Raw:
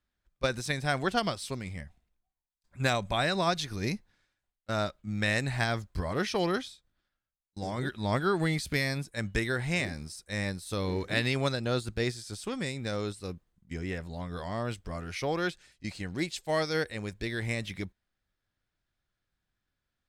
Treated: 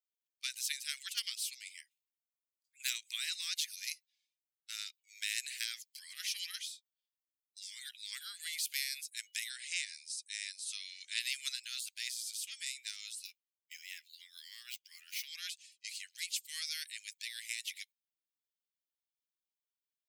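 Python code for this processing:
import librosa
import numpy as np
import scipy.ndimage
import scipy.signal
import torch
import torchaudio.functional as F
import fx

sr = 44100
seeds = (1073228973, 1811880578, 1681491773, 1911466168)

y = fx.steep_lowpass(x, sr, hz=9700.0, slope=36, at=(9.49, 11.2))
y = fx.median_filter(y, sr, points=5, at=(13.25, 15.28))
y = fx.bin_expand(y, sr, power=1.5)
y = scipy.signal.sosfilt(scipy.signal.butter(8, 2300.0, 'highpass', fs=sr, output='sos'), y)
y = fx.spectral_comp(y, sr, ratio=2.0)
y = F.gain(torch.from_numpy(y), 2.5).numpy()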